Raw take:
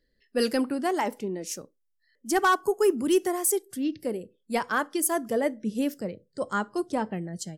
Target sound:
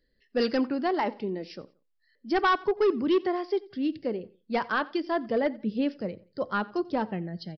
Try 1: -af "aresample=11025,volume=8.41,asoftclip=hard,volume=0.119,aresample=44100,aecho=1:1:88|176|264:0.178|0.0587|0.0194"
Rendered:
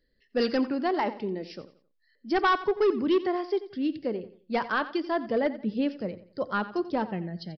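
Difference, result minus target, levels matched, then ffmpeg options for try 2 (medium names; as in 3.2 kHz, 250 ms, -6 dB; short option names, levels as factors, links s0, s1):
echo-to-direct +7 dB
-af "aresample=11025,volume=8.41,asoftclip=hard,volume=0.119,aresample=44100,aecho=1:1:88|176:0.0794|0.0262"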